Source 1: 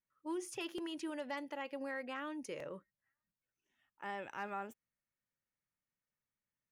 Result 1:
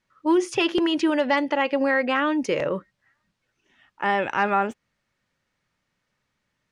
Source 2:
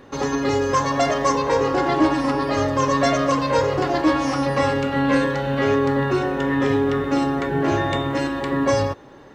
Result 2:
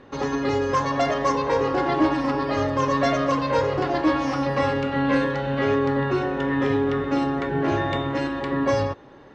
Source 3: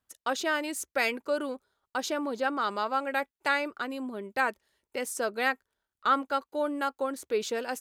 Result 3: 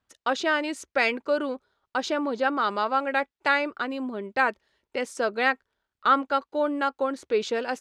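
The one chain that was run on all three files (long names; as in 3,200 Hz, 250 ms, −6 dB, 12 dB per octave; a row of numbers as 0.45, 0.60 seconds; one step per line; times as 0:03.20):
low-pass filter 4,800 Hz 12 dB per octave
normalise the peak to −9 dBFS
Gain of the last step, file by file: +20.5, −2.5, +4.5 decibels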